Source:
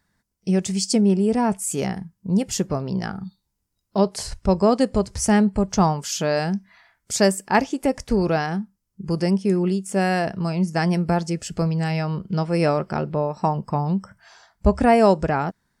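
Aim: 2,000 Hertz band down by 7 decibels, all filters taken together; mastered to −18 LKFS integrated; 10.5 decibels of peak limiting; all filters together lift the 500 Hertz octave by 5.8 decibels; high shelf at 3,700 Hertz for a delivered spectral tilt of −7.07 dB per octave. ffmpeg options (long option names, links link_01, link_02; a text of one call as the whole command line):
ffmpeg -i in.wav -af "equalizer=frequency=500:width_type=o:gain=8,equalizer=frequency=2000:width_type=o:gain=-7.5,highshelf=frequency=3700:gain=-9,volume=4.5dB,alimiter=limit=-7.5dB:level=0:latency=1" out.wav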